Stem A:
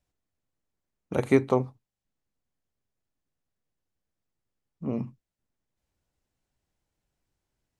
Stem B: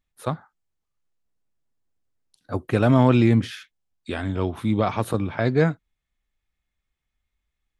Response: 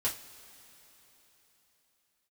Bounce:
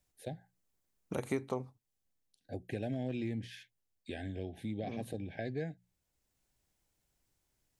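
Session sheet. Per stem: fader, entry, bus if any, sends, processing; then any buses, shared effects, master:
-0.5 dB, 0.00 s, no send, high shelf 5200 Hz +10 dB; auto duck -7 dB, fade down 0.80 s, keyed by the second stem
-10.0 dB, 0.00 s, no send, Chebyshev band-stop 800–1600 Hz, order 4; notches 60/120/180 Hz; hard clip -8.5 dBFS, distortion -37 dB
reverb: off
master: compressor 2.5:1, threshold -38 dBFS, peak gain reduction 15 dB

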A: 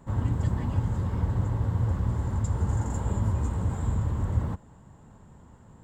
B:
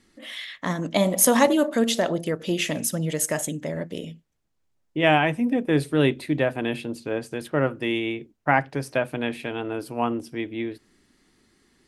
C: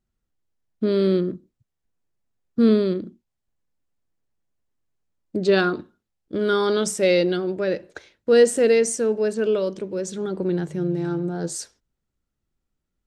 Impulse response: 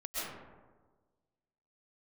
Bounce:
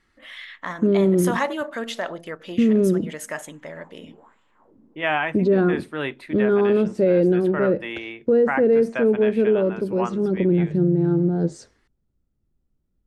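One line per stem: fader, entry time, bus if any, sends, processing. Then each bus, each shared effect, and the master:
-5.0 dB, 0.40 s, no send, resonant low shelf 170 Hz -12.5 dB, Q 1.5; wah 1.3 Hz 240–3000 Hz, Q 2.9; auto duck -18 dB, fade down 1.05 s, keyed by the third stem
-13.5 dB, 0.00 s, no send, bell 1400 Hz +15 dB 2.6 oct
-0.5 dB, 0.00 s, no send, treble ducked by the level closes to 2000 Hz, closed at -18.5 dBFS; tilt shelf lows +9 dB, about 770 Hz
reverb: off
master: limiter -10.5 dBFS, peak gain reduction 9 dB

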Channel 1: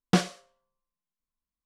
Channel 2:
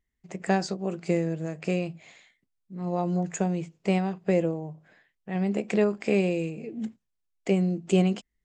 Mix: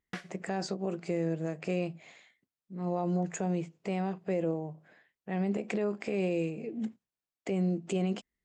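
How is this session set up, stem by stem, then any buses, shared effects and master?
-11.5 dB, 0.00 s, no send, bell 1900 Hz +14.5 dB 0.93 oct; auto duck -16 dB, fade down 0.20 s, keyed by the second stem
-0.5 dB, 0.00 s, no send, HPF 310 Hz 6 dB/oct; tilt -1.5 dB/oct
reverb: off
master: limiter -22.5 dBFS, peak gain reduction 10.5 dB

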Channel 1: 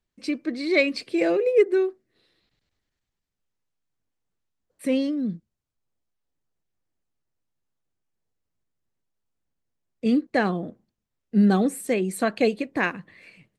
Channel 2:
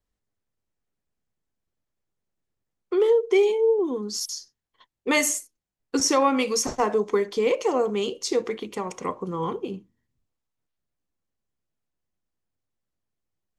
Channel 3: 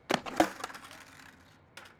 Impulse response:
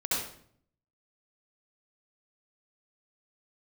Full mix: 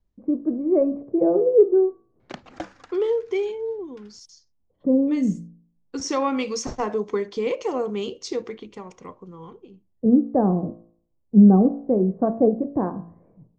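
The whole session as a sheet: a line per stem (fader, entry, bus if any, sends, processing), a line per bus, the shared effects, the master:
+2.0 dB, 0.00 s, no send, steep low-pass 1000 Hz 36 dB/oct; de-hum 56.68 Hz, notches 33
-4.0 dB, 0.00 s, no send, auto duck -17 dB, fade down 1.80 s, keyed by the first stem
-9.5 dB, 2.20 s, no send, dry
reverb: off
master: LPF 6600 Hz 24 dB/oct; low shelf 180 Hz +10 dB

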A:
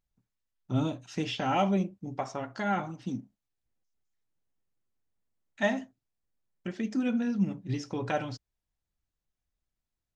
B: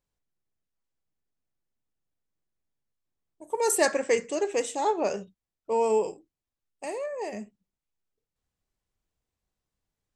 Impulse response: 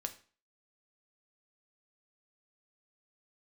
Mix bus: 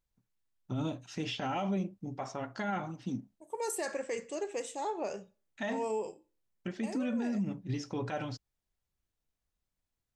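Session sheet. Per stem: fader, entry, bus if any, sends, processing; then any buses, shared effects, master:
-1.5 dB, 0.00 s, no send, dry
-12.0 dB, 0.00 s, send -4 dB, dry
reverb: on, RT60 0.40 s, pre-delay 4 ms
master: limiter -26 dBFS, peak gain reduction 10 dB

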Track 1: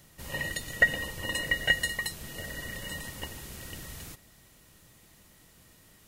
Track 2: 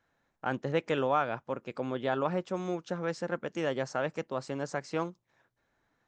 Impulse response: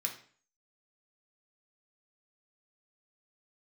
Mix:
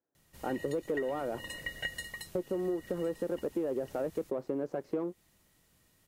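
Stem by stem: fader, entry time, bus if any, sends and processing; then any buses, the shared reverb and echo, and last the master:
-10.5 dB, 0.15 s, no send, dry
+1.0 dB, 0.00 s, muted 1.46–2.35, no send, sample leveller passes 3; band-pass 370 Hz, Q 1.9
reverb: off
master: compressor, threshold -30 dBFS, peak gain reduction 10 dB

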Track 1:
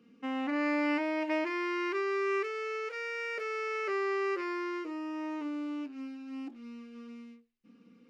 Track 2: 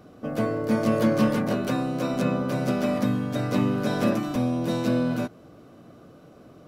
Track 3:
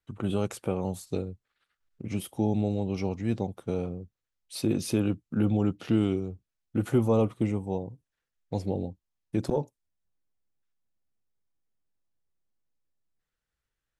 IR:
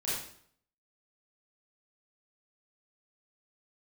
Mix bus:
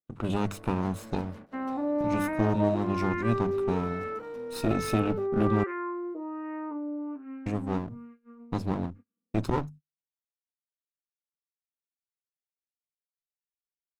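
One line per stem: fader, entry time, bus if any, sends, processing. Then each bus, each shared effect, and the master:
+0.5 dB, 1.30 s, no send, bell 6300 Hz -13 dB 2.6 oct; LFO low-pass sine 1.2 Hz 650–1800 Hz
-16.5 dB, 0.00 s, no send, HPF 160 Hz 12 dB/oct; tube stage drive 27 dB, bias 0.75
+1.5 dB, 0.00 s, muted 5.64–7.46, no send, minimum comb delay 0.77 ms; notches 50/100/150/200/250 Hz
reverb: off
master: gate -45 dBFS, range -32 dB; high shelf 7100 Hz -5.5 dB

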